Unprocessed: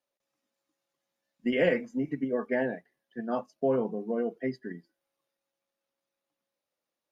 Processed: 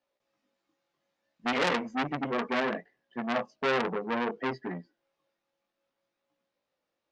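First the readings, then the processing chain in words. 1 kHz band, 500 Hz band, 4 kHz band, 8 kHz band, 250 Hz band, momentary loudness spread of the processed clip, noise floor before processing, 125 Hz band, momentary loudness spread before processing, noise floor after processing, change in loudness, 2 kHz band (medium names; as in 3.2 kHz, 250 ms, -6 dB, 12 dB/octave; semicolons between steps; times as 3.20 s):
+8.5 dB, -3.0 dB, +9.5 dB, no reading, -2.0 dB, 11 LU, under -85 dBFS, -1.5 dB, 16 LU, -85 dBFS, -0.5 dB, +4.5 dB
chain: in parallel at -2 dB: peak limiter -21.5 dBFS, peak gain reduction 8.5 dB; on the sum: chorus 0.63 Hz, delay 16.5 ms, depth 4.9 ms; distance through air 120 m; transformer saturation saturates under 3 kHz; trim +4 dB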